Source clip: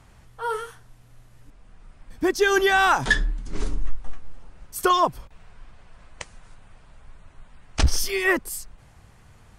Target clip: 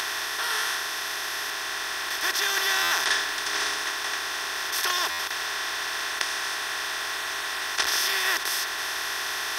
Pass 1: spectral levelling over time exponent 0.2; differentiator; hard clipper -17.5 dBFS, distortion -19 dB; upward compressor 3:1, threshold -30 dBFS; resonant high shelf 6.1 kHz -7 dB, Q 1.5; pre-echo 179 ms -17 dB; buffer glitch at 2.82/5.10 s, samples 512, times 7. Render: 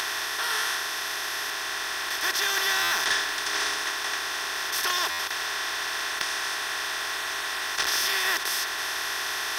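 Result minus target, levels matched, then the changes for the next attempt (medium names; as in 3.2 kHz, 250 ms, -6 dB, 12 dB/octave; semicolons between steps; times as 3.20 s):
hard clipper: distortion +19 dB
change: hard clipper -7.5 dBFS, distortion -38 dB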